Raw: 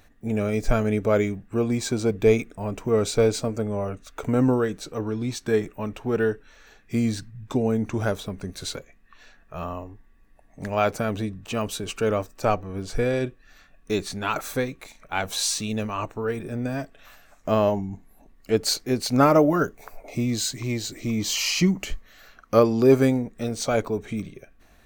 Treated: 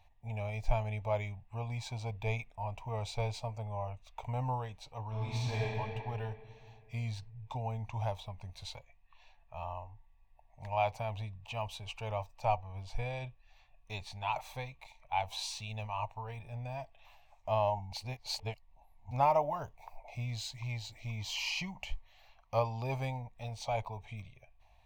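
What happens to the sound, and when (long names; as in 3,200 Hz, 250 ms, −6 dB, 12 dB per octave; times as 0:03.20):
0:05.07–0:05.65: thrown reverb, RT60 2.6 s, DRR −7.5 dB
0:17.92–0:19.11: reverse
whole clip: drawn EQ curve 120 Hz 0 dB, 170 Hz −14 dB, 360 Hz −26 dB, 640 Hz −2 dB, 920 Hz +8 dB, 1,400 Hz −20 dB, 2,400 Hz 0 dB, 3,900 Hz −4 dB, 7,700 Hz −14 dB; level −7 dB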